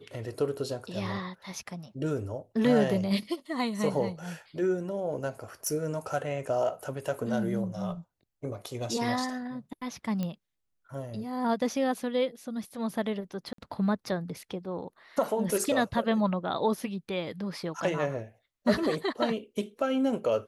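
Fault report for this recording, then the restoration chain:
5.67 pop -20 dBFS
10.23 pop -20 dBFS
13.53–13.58 gap 53 ms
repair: de-click; interpolate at 13.53, 53 ms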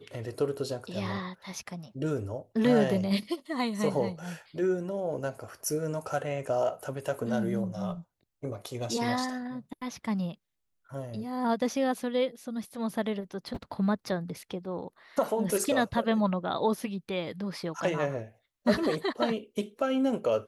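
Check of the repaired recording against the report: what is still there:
10.23 pop

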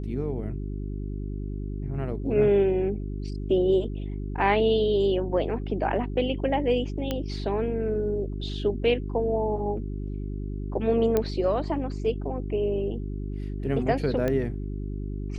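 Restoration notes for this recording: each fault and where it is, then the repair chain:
hum 50 Hz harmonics 8 -32 dBFS
7.11 pop -14 dBFS
11.17 pop -11 dBFS
14.28 pop -15 dBFS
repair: de-click; de-hum 50 Hz, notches 8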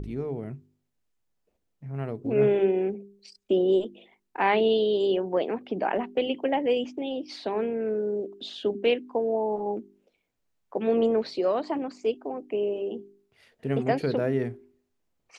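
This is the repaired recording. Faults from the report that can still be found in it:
none

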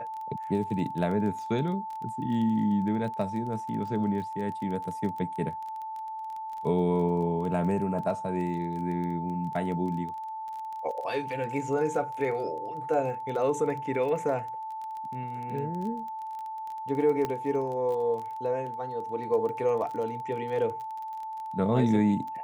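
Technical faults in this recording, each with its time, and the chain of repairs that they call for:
crackle 22/s -35 dBFS
tone 880 Hz -34 dBFS
17.25 pop -17 dBFS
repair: de-click; notch 880 Hz, Q 30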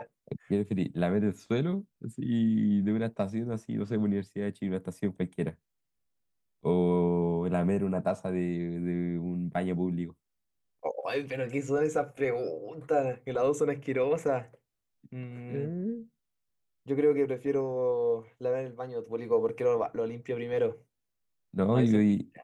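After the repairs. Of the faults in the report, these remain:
none

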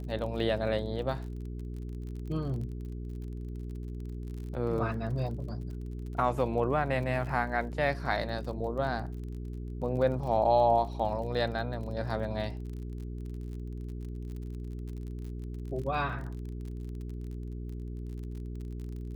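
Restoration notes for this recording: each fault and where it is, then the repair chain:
crackle 36/s -40 dBFS
hum 60 Hz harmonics 7 -38 dBFS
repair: de-click; de-hum 60 Hz, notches 7

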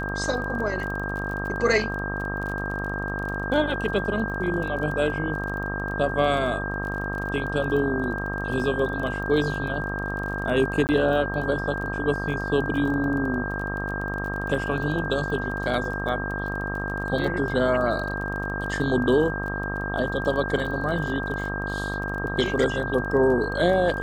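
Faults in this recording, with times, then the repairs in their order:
buzz 50 Hz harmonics 26 -31 dBFS
crackle 27/s -32 dBFS
tone 1600 Hz -30 dBFS
10.87–10.89 gap 19 ms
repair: de-click; de-hum 50 Hz, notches 26; notch 1600 Hz, Q 30; interpolate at 10.87, 19 ms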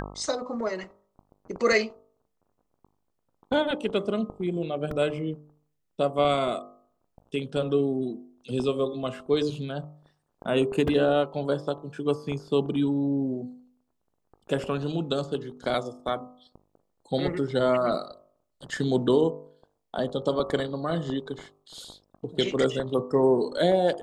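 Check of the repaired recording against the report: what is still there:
none

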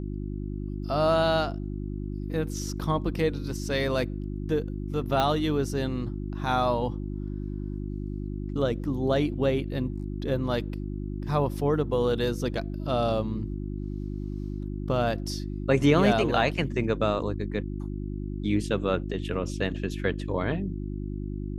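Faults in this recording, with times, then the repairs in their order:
hum 50 Hz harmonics 7 -33 dBFS
5.2 pop -12 dBFS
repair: de-click; de-hum 50 Hz, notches 7

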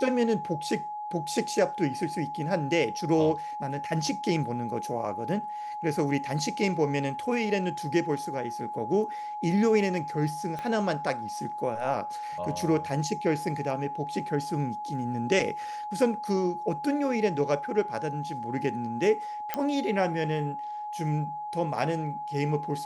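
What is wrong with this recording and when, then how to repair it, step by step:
tone 840 Hz -33 dBFS
10.59 pop -22 dBFS
19.54 pop -13 dBFS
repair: de-click; notch 840 Hz, Q 30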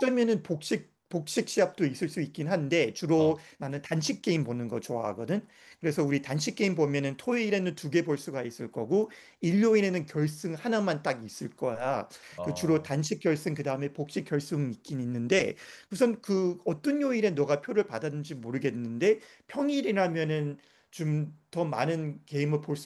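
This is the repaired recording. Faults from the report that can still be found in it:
10.59 pop

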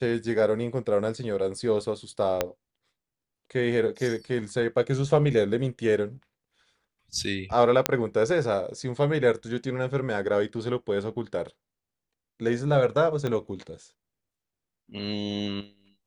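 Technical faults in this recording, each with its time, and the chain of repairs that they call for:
2.41 pop -9 dBFS
7.86 pop -3 dBFS
13.27 pop -17 dBFS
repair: de-click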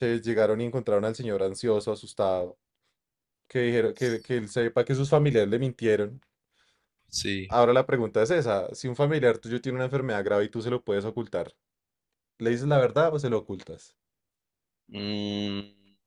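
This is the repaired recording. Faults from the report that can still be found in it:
2.41 pop
13.27 pop

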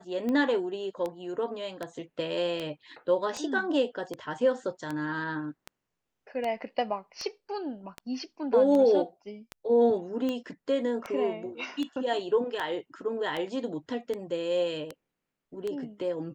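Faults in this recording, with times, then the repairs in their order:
tick 78 rpm -20 dBFS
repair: de-click

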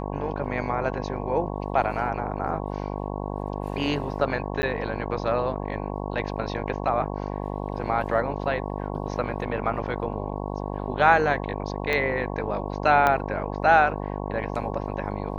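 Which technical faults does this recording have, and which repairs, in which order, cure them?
buzz 50 Hz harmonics 22 -31 dBFS
4.62–4.63 gap 10 ms
11.93 pop -13 dBFS
13.07 pop -9 dBFS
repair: de-click; de-hum 50 Hz, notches 22; interpolate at 4.62, 10 ms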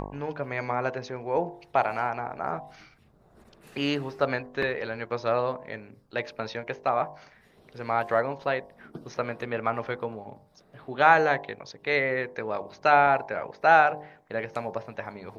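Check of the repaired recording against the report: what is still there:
11.93 pop
13.07 pop

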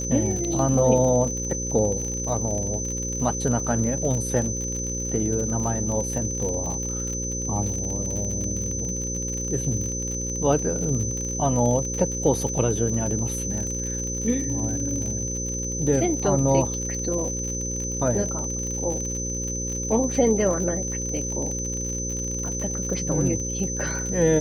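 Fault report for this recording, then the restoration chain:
buzz 60 Hz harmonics 9 -31 dBFS
crackle 54/s -29 dBFS
tone 6100 Hz -29 dBFS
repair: de-click; de-hum 60 Hz, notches 9; notch 6100 Hz, Q 30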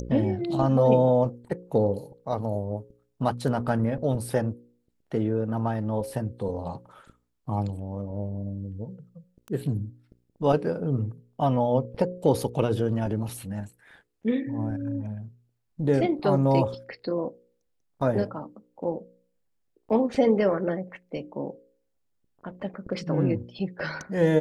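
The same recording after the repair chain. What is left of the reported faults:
none

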